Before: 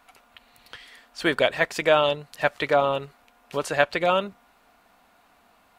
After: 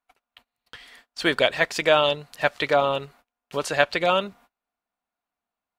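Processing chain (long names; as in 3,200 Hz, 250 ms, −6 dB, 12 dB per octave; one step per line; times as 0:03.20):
dynamic equaliser 4,500 Hz, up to +5 dB, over −41 dBFS, Q 0.84
noise gate −50 dBFS, range −29 dB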